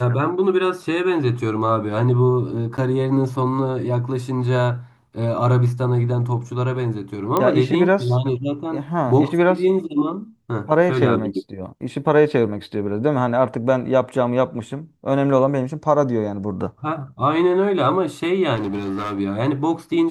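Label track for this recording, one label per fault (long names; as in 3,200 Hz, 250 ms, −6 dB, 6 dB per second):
2.770000	2.780000	drop-out 9.3 ms
7.370000	7.370000	click −6 dBFS
18.550000	19.200000	clipping −21 dBFS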